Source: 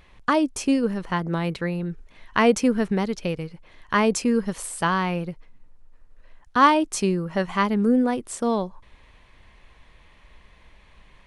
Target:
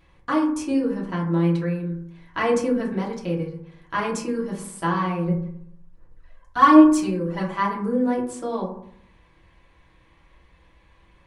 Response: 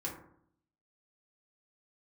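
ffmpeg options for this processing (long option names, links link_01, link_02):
-filter_complex "[0:a]asettb=1/sr,asplit=3[link_01][link_02][link_03];[link_01]atrim=end=5.274[link_04];[link_02]atrim=start=5.27:end=7.47,asetpts=PTS-STARTPTS,afade=type=in:duration=0.004:curve=qsin,afade=type=out:start_time=2.196:duration=0.004:curve=qsin,aphaser=in_gain=1:out_gain=1:delay=1.9:decay=0.64:speed=1.3:type=sinusoidal[link_05];[link_03]atrim=start=7.466[link_06];[link_04][link_05]acrossfade=duration=0.004:curve1=hsin:curve2=qsin[link_07];[link_07][link_06]acrossfade=duration=0.004:curve1=qsin:curve2=hsin[link_08];[1:a]atrim=start_sample=2205[link_09];[link_08][link_09]afir=irnorm=-1:irlink=0,volume=-4.5dB"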